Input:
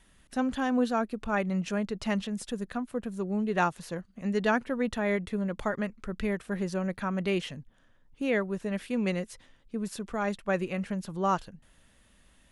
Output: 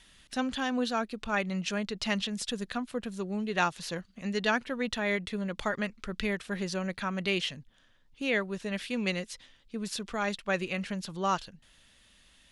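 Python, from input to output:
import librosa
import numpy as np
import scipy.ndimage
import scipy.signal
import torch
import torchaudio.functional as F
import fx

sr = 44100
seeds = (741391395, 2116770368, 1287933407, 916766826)

p1 = fx.rider(x, sr, range_db=10, speed_s=0.5)
p2 = x + F.gain(torch.from_numpy(p1), -3.0).numpy()
p3 = fx.peak_eq(p2, sr, hz=4000.0, db=12.5, octaves=2.1)
y = F.gain(torch.from_numpy(p3), -8.0).numpy()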